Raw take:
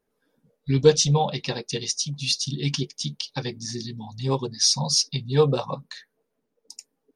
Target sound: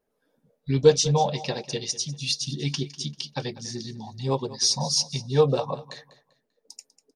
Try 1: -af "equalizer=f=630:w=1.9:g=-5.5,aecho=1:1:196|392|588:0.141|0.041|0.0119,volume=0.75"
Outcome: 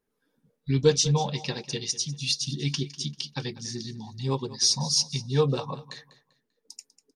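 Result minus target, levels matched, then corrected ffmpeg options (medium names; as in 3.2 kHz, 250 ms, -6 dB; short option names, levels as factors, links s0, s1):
500 Hz band -3.5 dB
-af "equalizer=f=630:w=1.9:g=6,aecho=1:1:196|392|588:0.141|0.041|0.0119,volume=0.75"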